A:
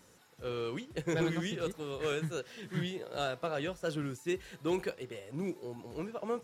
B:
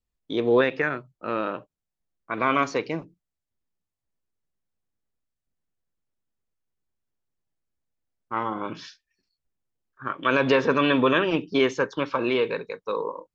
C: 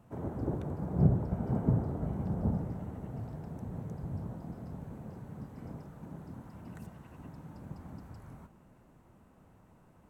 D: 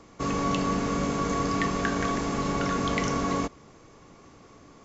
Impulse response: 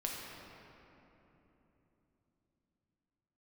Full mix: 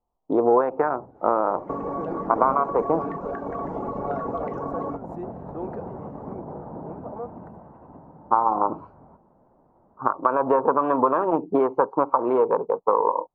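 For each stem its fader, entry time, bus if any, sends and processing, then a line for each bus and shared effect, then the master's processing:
-10.5 dB, 0.90 s, bus A, no send, bell 1000 Hz -12 dB 0.77 oct; backwards sustainer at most 120 dB/s
+1.0 dB, 0.00 s, bus A, no send, Wiener smoothing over 25 samples
-2.0 dB, 0.70 s, no bus, no send, negative-ratio compressor -45 dBFS, ratio -1; auto duck -11 dB, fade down 1.55 s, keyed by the second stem
+2.0 dB, 1.50 s, no bus, no send, reverb removal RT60 1.9 s; compressor 6:1, threshold -38 dBFS, peak gain reduction 13 dB
bus A: 0.0 dB, band shelf 1000 Hz +9.5 dB 1.2 oct; compressor 8:1, threshold -26 dBFS, peak gain reduction 16.5 dB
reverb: off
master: EQ curve 120 Hz 0 dB, 570 Hz +13 dB, 890 Hz +14 dB, 3200 Hz -21 dB, 6100 Hz -26 dB

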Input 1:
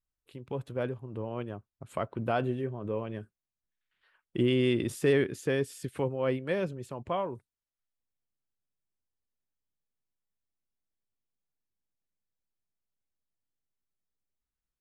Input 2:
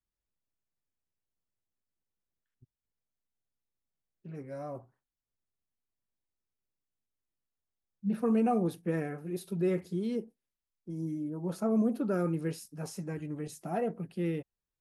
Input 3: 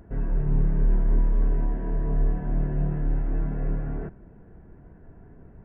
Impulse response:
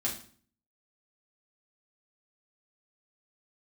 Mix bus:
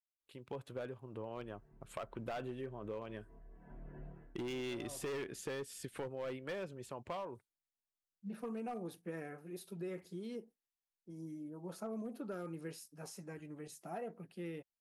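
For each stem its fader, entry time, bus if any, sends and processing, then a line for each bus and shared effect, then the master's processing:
-2.0 dB, 0.00 s, no send, gate with hold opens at -50 dBFS
-5.5 dB, 0.20 s, no send, dry
-9.5 dB, 1.25 s, send -19 dB, reverb removal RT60 0.65 s; compressor 5:1, threshold -29 dBFS, peak gain reduction 11 dB; auto duck -17 dB, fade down 0.25 s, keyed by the first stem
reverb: on, RT60 0.45 s, pre-delay 4 ms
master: low shelf 320 Hz -9.5 dB; overloaded stage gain 31 dB; compressor, threshold -39 dBFS, peak gain reduction 6.5 dB

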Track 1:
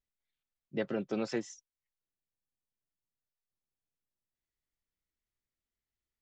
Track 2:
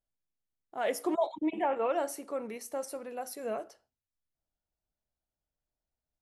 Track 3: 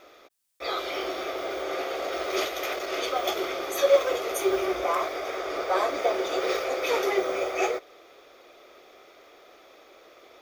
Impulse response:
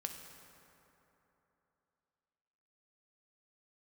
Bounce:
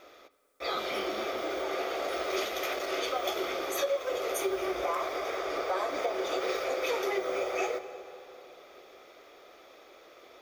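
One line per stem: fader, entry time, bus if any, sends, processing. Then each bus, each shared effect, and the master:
-14.0 dB, 0.00 s, no send, dry
-15.0 dB, 0.00 s, no send, dry
-5.0 dB, 0.00 s, send -3.5 dB, dry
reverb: on, RT60 3.3 s, pre-delay 3 ms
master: compressor 6:1, threshold -27 dBFS, peak gain reduction 11.5 dB

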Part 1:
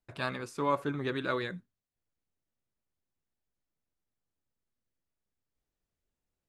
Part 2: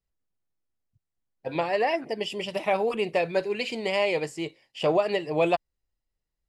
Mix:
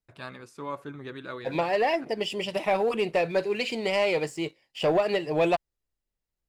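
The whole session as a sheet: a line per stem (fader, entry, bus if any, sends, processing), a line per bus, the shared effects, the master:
-6.0 dB, 0.00 s, no send, dry
-2.5 dB, 0.00 s, no send, sample leveller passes 1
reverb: off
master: dry

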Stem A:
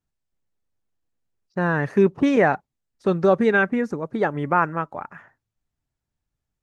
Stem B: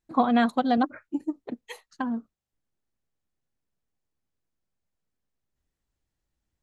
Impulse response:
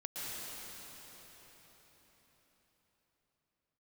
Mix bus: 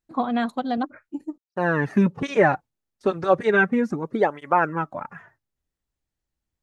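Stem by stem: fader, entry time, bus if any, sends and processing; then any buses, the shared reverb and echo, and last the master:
+3.0 dB, 0.00 s, no send, gate with hold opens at -48 dBFS; tape flanging out of phase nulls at 0.34 Hz, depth 6.4 ms
-2.5 dB, 0.00 s, muted 1.38–2.54, no send, dry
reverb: off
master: dry

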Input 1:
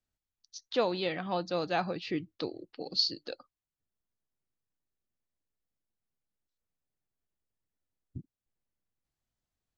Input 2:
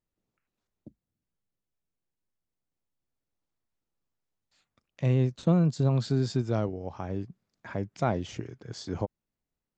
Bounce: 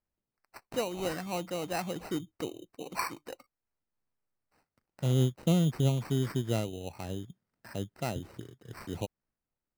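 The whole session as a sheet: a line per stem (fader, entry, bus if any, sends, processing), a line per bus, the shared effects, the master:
-0.5 dB, 0.00 s, no send, gate -54 dBFS, range -7 dB; low shelf 320 Hz +4.5 dB
-0.5 dB, 0.00 s, no send, notch 1100 Hz, Q 6; auto duck -6 dB, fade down 0.35 s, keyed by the first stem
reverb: off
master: sample-and-hold 13×; noise-modulated level, depth 55%

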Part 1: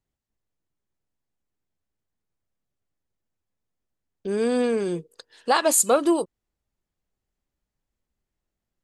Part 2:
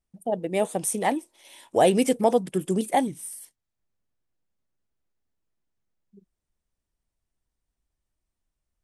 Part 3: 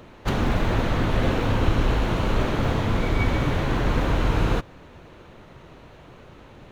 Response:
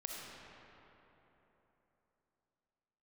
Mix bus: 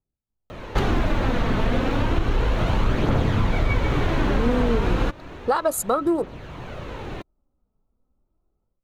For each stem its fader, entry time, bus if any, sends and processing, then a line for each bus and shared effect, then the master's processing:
-4.5 dB, 0.00 s, no send, Wiener smoothing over 25 samples; band shelf 4400 Hz -10.5 dB 2.6 oct; small resonant body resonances 1300/3900 Hz, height 12 dB
off
-2.0 dB, 0.50 s, no send, high shelf 6600 Hz -5 dB; vocal rider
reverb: off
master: AGC gain up to 15.5 dB; phaser 0.32 Hz, delay 4.7 ms, feedback 34%; compressor 2.5:1, threshold -21 dBFS, peak gain reduction 11 dB

